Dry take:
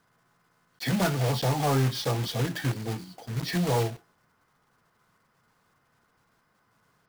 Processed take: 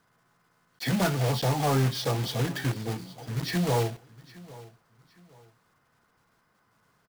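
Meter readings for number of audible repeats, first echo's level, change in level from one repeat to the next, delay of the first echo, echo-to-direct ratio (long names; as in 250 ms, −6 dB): 2, −20.5 dB, −10.0 dB, 811 ms, −20.0 dB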